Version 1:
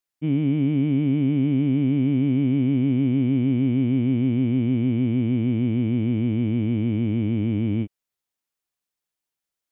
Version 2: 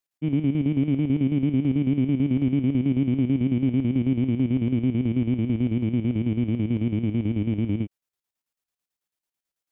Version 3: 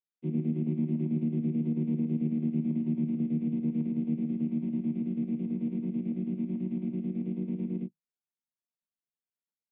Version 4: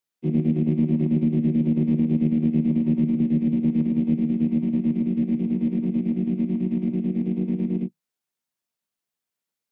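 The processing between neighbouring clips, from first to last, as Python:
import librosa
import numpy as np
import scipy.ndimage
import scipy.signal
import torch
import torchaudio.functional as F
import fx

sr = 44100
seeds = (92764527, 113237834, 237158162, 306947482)

y1 = fx.chopper(x, sr, hz=9.1, depth_pct=60, duty_pct=60)
y2 = fx.chord_vocoder(y1, sr, chord='minor triad', root=51)
y2 = y2 * librosa.db_to_amplitude(-6.5)
y3 = fx.tracing_dist(y2, sr, depth_ms=0.12)
y3 = fx.low_shelf(y3, sr, hz=60.0, db=-8.5)
y3 = y3 * librosa.db_to_amplitude(9.0)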